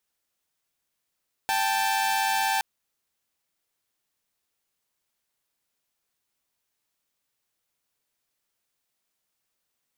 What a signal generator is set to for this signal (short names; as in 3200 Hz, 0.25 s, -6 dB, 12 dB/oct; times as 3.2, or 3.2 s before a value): chord G5/A5 saw, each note -23 dBFS 1.12 s